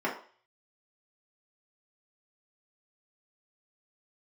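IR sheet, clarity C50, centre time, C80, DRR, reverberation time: 8.0 dB, 25 ms, 12.5 dB, −6.0 dB, 0.45 s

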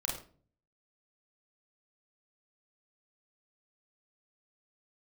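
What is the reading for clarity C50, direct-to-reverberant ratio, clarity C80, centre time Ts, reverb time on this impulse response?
5.5 dB, −2.0 dB, 9.5 dB, 36 ms, 0.45 s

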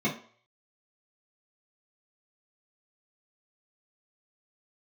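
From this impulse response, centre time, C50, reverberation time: 20 ms, 10.5 dB, 0.50 s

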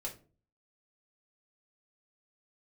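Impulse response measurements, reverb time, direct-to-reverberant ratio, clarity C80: 0.40 s, −3.5 dB, 17.5 dB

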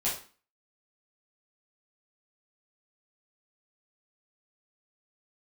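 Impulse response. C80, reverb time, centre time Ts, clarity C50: 11.5 dB, 0.40 s, 32 ms, 6.0 dB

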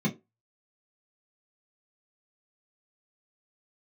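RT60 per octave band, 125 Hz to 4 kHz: 0.20, 0.20, 0.25, 0.20, 0.15, 0.15 seconds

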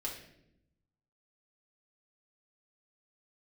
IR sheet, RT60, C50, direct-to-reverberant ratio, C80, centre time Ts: 0.80 s, 6.0 dB, −4.0 dB, 9.0 dB, 31 ms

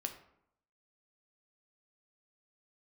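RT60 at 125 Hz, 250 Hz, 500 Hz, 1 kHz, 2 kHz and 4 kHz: 0.80, 0.80, 0.75, 0.75, 0.60, 0.40 seconds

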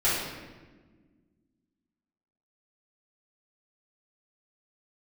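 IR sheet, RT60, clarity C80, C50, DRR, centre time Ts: non-exponential decay, 3.0 dB, 0.0 dB, −12.0 dB, 80 ms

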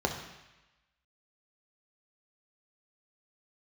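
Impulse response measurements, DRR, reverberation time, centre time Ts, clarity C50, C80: 2.0 dB, 1.0 s, 25 ms, 7.0 dB, 9.0 dB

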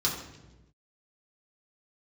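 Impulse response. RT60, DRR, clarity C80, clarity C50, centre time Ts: 1.1 s, −6.0 dB, 7.0 dB, 5.0 dB, 38 ms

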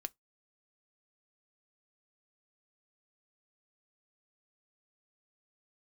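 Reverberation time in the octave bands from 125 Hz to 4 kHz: 0.20, 0.15, 0.15, 0.15, 0.15, 0.15 seconds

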